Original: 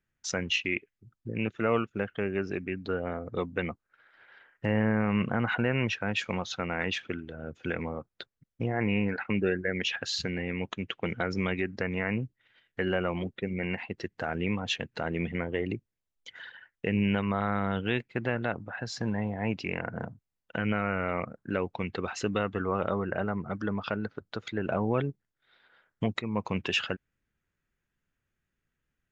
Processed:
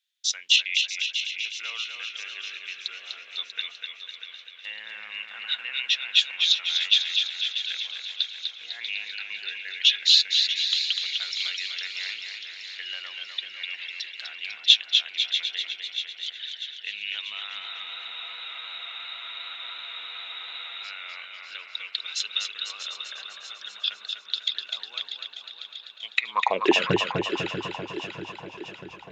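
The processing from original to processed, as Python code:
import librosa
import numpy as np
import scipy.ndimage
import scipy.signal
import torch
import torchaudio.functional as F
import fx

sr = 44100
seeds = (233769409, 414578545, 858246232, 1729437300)

y = fx.filter_sweep_highpass(x, sr, from_hz=3600.0, to_hz=66.0, start_s=26.1, end_s=27.1, q=6.8)
y = fx.echo_feedback(y, sr, ms=640, feedback_pct=56, wet_db=-10)
y = fx.spec_freeze(y, sr, seeds[0], at_s=17.64, hold_s=3.21)
y = fx.echo_warbled(y, sr, ms=250, feedback_pct=57, rate_hz=2.8, cents=57, wet_db=-5.0)
y = y * librosa.db_to_amplitude(4.5)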